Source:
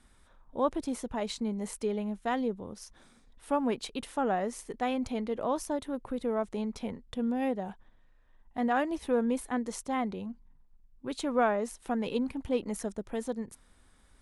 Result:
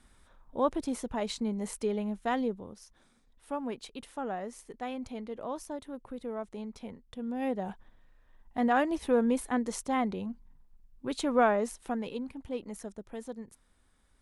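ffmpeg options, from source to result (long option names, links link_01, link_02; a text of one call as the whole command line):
ffmpeg -i in.wav -af "volume=9dB,afade=type=out:start_time=2.42:duration=0.4:silence=0.446684,afade=type=in:start_time=7.25:duration=0.45:silence=0.375837,afade=type=out:start_time=11.63:duration=0.52:silence=0.375837" out.wav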